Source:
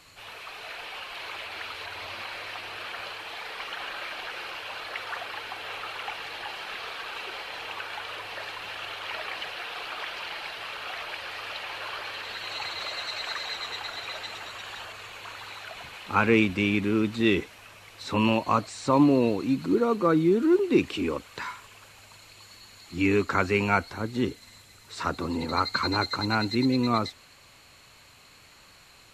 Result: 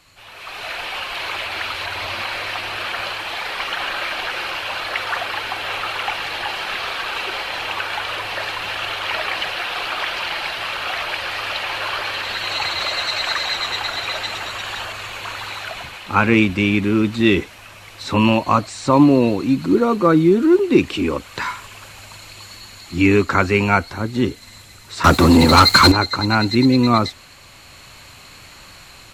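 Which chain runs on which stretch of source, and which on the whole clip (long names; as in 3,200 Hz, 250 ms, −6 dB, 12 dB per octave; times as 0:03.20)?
0:25.04–0:25.92: high-shelf EQ 8,800 Hz +8.5 dB + leveller curve on the samples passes 3
whole clip: low-shelf EQ 100 Hz +5 dB; notch filter 450 Hz, Q 12; automatic gain control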